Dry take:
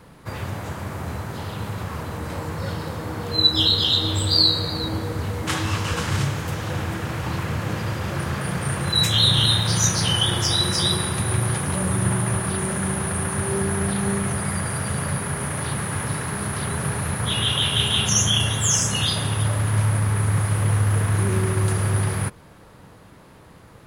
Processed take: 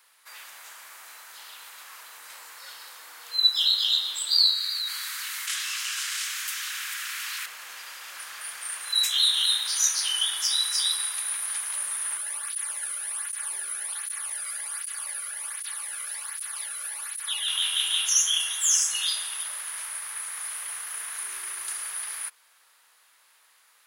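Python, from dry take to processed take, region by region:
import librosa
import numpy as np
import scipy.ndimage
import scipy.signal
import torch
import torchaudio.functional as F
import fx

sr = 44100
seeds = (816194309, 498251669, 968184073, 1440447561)

y = fx.chain(x, sr, fx.highpass(hz=1300.0, slope=24),
    fx.env_flatten(amount_pct=70), at=(4.55, 7.46))
y = fx.chain(y, sr, fx.comb(ms=3.5, depth=0.54),
    fx.flanger_cancel(hz=1.3, depth_ms=1.2), at=(12.17, 17.48))
y = scipy.signal.sosfilt(scipy.signal.butter(2, 1300.0, 'highpass', fs=sr, output='sos'), y)
y = fx.tilt_eq(y, sr, slope=3.0)
y = F.gain(torch.from_numpy(y), -9.0).numpy()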